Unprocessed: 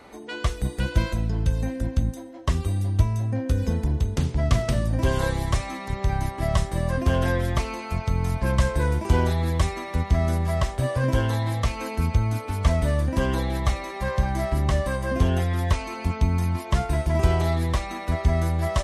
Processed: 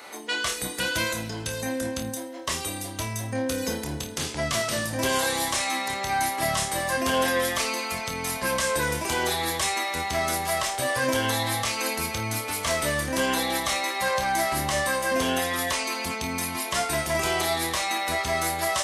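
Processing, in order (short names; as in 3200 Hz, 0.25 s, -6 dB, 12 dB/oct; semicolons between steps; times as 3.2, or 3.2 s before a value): HPF 270 Hz 6 dB/oct; tilt +3 dB/oct; limiter -20 dBFS, peak gain reduction 9 dB; flutter echo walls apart 4.6 m, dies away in 0.25 s; gain +4.5 dB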